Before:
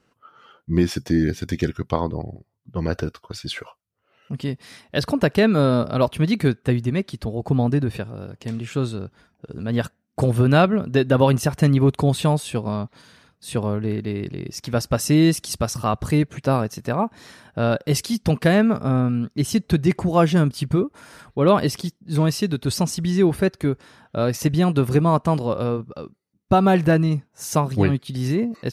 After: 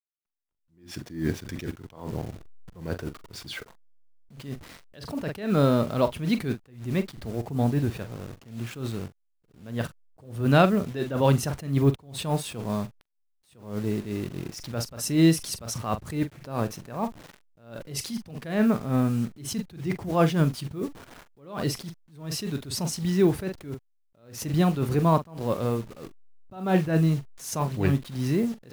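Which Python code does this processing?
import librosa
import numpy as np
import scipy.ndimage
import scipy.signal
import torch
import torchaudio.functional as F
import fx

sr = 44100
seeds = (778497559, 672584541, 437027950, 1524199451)

y = fx.delta_hold(x, sr, step_db=-36.5)
y = fx.doubler(y, sr, ms=43.0, db=-13.0)
y = fx.attack_slew(y, sr, db_per_s=120.0)
y = y * 10.0 ** (-3.0 / 20.0)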